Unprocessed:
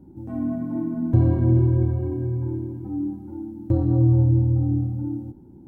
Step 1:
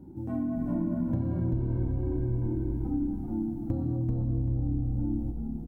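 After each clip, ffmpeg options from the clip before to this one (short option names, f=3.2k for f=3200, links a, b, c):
-filter_complex "[0:a]acompressor=threshold=-27dB:ratio=10,asplit=6[a][b][c][d][e][f];[b]adelay=388,afreqshift=-66,volume=-3.5dB[g];[c]adelay=776,afreqshift=-132,volume=-12.6dB[h];[d]adelay=1164,afreqshift=-198,volume=-21.7dB[i];[e]adelay=1552,afreqshift=-264,volume=-30.9dB[j];[f]adelay=1940,afreqshift=-330,volume=-40dB[k];[a][g][h][i][j][k]amix=inputs=6:normalize=0"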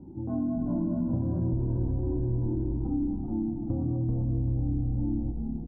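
-filter_complex "[0:a]lowpass=f=1.1k:w=0.5412,lowpass=f=1.1k:w=1.3066,asplit=2[a][b];[b]alimiter=level_in=0.5dB:limit=-24dB:level=0:latency=1:release=11,volume=-0.5dB,volume=-2dB[c];[a][c]amix=inputs=2:normalize=0,volume=-3.5dB"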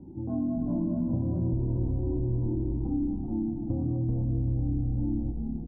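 -af "lowpass=1k"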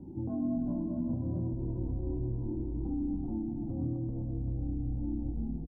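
-filter_complex "[0:a]alimiter=level_in=2.5dB:limit=-24dB:level=0:latency=1:release=307,volume=-2.5dB,asplit=2[a][b];[b]aecho=0:1:127:0.316[c];[a][c]amix=inputs=2:normalize=0"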